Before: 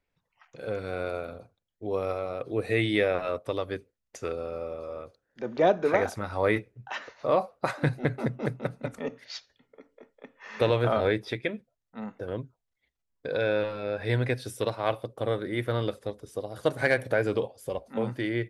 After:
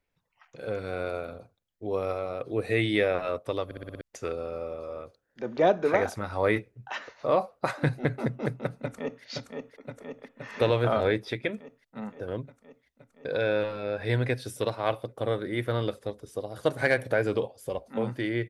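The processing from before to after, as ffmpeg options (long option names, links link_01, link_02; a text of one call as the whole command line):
ffmpeg -i in.wav -filter_complex "[0:a]asplit=2[link_01][link_02];[link_02]afade=type=in:start_time=8.8:duration=0.01,afade=type=out:start_time=9.24:duration=0.01,aecho=0:1:520|1040|1560|2080|2600|3120|3640|4160|4680|5200|5720|6240:0.595662|0.446747|0.33506|0.251295|0.188471|0.141353|0.106015|0.0795113|0.0596335|0.0447251|0.0335438|0.0251579[link_03];[link_01][link_03]amix=inputs=2:normalize=0,asplit=7[link_04][link_05][link_06][link_07][link_08][link_09][link_10];[link_04]atrim=end=3.712[link_11];[link_05]atrim=start=3.648:end=3.712[link_12];[link_06]atrim=start=3.648:end=3.712[link_13];[link_07]atrim=start=3.648:end=3.712[link_14];[link_08]atrim=start=3.648:end=3.712[link_15];[link_09]atrim=start=3.648:end=3.712[link_16];[link_10]atrim=start=4.008[link_17];[link_11][link_12]acrossfade=duration=0.004:curve1=hsin:curve2=hsin[link_18];[link_18][link_13]acrossfade=duration=0.004:curve1=hsin:curve2=hsin[link_19];[link_19][link_14]acrossfade=duration=0.004:curve1=hsin:curve2=hsin[link_20];[link_20][link_15]acrossfade=duration=0.004:curve1=hsin:curve2=hsin[link_21];[link_21][link_16]acrossfade=duration=0.004:curve1=hsin:curve2=hsin[link_22];[link_22][link_17]acrossfade=duration=0.004:curve1=hsin:curve2=hsin" out.wav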